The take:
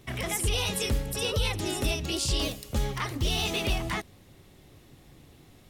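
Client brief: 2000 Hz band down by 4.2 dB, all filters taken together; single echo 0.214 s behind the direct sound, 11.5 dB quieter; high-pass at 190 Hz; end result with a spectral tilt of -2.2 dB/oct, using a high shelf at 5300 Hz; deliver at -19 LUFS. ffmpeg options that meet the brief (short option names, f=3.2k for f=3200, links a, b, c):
-af "highpass=190,equalizer=f=2k:t=o:g=-8,highshelf=f=5.3k:g=9,aecho=1:1:214:0.266,volume=9dB"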